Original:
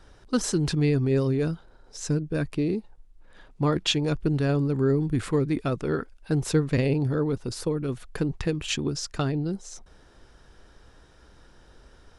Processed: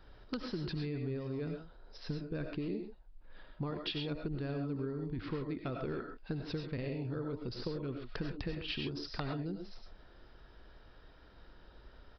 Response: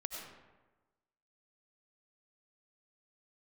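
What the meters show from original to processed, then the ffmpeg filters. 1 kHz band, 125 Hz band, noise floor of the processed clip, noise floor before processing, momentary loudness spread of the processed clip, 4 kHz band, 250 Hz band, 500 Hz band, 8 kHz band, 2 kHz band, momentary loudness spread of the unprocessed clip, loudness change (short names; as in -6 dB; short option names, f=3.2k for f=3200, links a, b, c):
-11.5 dB, -14.0 dB, -58 dBFS, -55 dBFS, 13 LU, -10.5 dB, -13.0 dB, -13.5 dB, under -30 dB, -11.0 dB, 7 LU, -13.0 dB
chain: -filter_complex "[0:a]acompressor=threshold=-29dB:ratio=16,aresample=11025,aeval=exprs='(mod(10.6*val(0)+1,2)-1)/10.6':c=same,aresample=44100[a];[1:a]atrim=start_sample=2205,atrim=end_sample=6174[b];[a][b]afir=irnorm=-1:irlink=0,volume=-2.5dB"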